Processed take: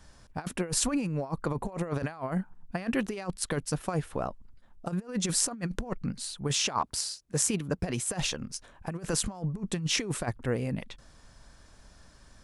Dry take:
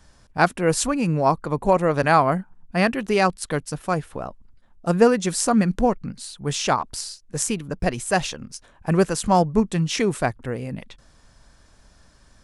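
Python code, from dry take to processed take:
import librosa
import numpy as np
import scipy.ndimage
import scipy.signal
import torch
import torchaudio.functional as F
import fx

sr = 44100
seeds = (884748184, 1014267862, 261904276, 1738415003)

y = fx.highpass(x, sr, hz=58.0, slope=12, at=(6.44, 8.1))
y = fx.over_compress(y, sr, threshold_db=-24.0, ratio=-0.5)
y = y * 10.0 ** (-5.5 / 20.0)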